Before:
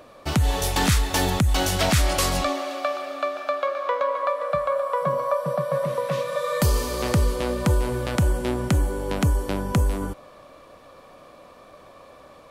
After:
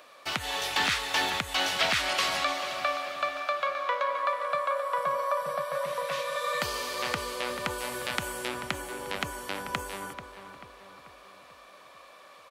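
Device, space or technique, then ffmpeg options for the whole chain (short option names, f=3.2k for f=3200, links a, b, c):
filter by subtraction: -filter_complex "[0:a]acrossover=split=4600[a][b];[b]acompressor=threshold=-42dB:ratio=4:attack=1:release=60[c];[a][c]amix=inputs=2:normalize=0,asettb=1/sr,asplit=3[d][e][f];[d]atrim=end=7.784[g];[e]atrim=start=7.78:end=8.48,asetpts=PTS-STARTPTS,afade=t=in:d=0.004:c=qsin,afade=t=out:st=0.696:d=0.004:c=qsin,highshelf=f=5.8k:g=6[h];[f]atrim=start=8.476[i];[g][h]acrossfade=d=0.004:c1=hsin:c2=qsin[j];[j][i]acrossfade=d=0.004:c1=qsin:c2=hsin,asplit=2[k][l];[l]adelay=438,lowpass=f=2.5k:p=1,volume=-9.5dB,asplit=2[m][n];[n]adelay=438,lowpass=f=2.5k:p=1,volume=0.54,asplit=2[o][p];[p]adelay=438,lowpass=f=2.5k:p=1,volume=0.54,asplit=2[q][r];[r]adelay=438,lowpass=f=2.5k:p=1,volume=0.54,asplit=2[s][t];[t]adelay=438,lowpass=f=2.5k:p=1,volume=0.54,asplit=2[u][v];[v]adelay=438,lowpass=f=2.5k:p=1,volume=0.54[w];[k][m][o][q][s][u][w]amix=inputs=7:normalize=0,asplit=2[x][y];[y]lowpass=2.2k,volume=-1[z];[x][z]amix=inputs=2:normalize=0"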